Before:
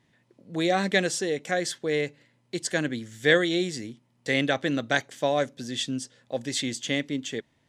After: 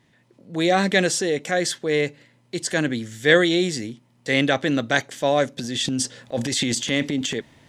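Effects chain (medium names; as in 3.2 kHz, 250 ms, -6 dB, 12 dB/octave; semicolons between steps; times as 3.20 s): transient shaper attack -3 dB, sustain +2 dB, from 5.57 s sustain +10 dB; trim +5.5 dB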